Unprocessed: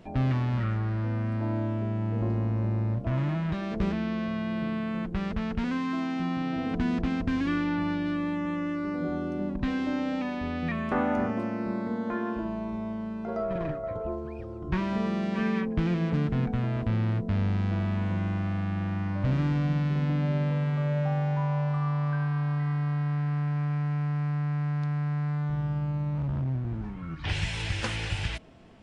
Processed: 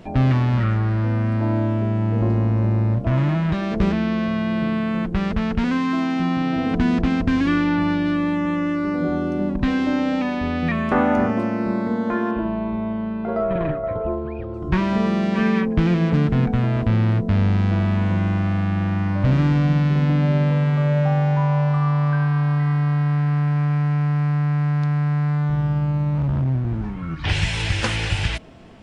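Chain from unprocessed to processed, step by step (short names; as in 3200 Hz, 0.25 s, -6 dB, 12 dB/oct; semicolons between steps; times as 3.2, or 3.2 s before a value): 12.31–14.54 LPF 3800 Hz 24 dB/oct; gain +8.5 dB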